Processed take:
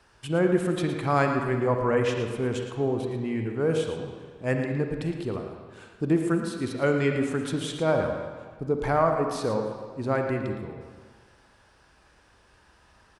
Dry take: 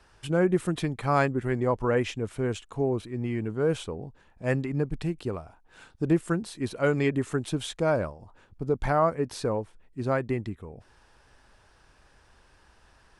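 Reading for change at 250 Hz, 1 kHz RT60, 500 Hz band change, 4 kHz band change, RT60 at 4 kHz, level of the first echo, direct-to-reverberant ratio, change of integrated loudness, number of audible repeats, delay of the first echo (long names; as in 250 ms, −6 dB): +1.5 dB, 1.7 s, +2.0 dB, +1.5 dB, 1.4 s, −10.0 dB, 3.0 dB, +1.5 dB, 1, 113 ms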